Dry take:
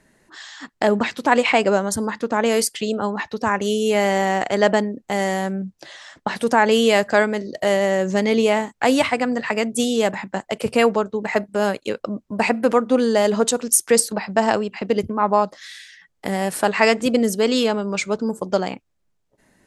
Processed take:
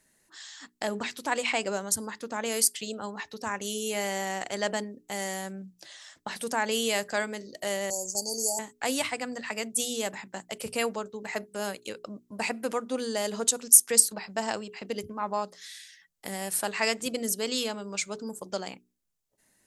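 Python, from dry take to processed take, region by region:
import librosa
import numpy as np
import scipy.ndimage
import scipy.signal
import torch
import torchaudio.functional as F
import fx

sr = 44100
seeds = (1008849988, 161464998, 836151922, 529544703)

y = fx.chain(x, sr, fx.brickwall_bandstop(low_hz=970.0, high_hz=4400.0),
    fx.tilt_eq(slope=4.0),
    fx.gate_hold(open_db=-16.0, close_db=-19.0, hold_ms=71.0, range_db=-21, attack_ms=1.4, release_ms=100.0), at=(7.9, 8.59))
y = librosa.effects.preemphasis(y, coef=0.8, zi=[0.0])
y = fx.hum_notches(y, sr, base_hz=60, count=7)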